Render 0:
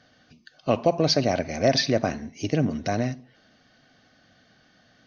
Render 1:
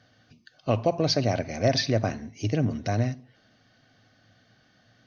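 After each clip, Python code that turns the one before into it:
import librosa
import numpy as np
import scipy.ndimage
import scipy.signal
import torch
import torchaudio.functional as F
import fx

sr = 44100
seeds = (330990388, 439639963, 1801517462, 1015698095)

y = fx.peak_eq(x, sr, hz=110.0, db=12.5, octaves=0.28)
y = F.gain(torch.from_numpy(y), -3.0).numpy()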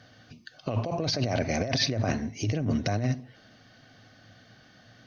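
y = fx.over_compress(x, sr, threshold_db=-29.0, ratio=-1.0)
y = F.gain(torch.from_numpy(y), 2.0).numpy()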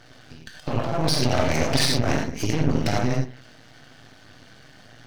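y = fx.rev_gated(x, sr, seeds[0], gate_ms=130, shape='flat', drr_db=-1.0)
y = np.maximum(y, 0.0)
y = F.gain(torch.from_numpy(y), 6.5).numpy()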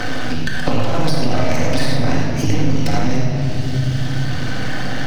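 y = fx.room_shoebox(x, sr, seeds[1], volume_m3=2300.0, walls='mixed', distance_m=2.0)
y = fx.band_squash(y, sr, depth_pct=100)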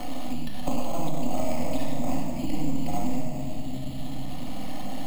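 y = fx.fixed_phaser(x, sr, hz=420.0, stages=6)
y = np.repeat(scipy.signal.resample_poly(y, 1, 6), 6)[:len(y)]
y = F.gain(torch.from_numpy(y), -7.5).numpy()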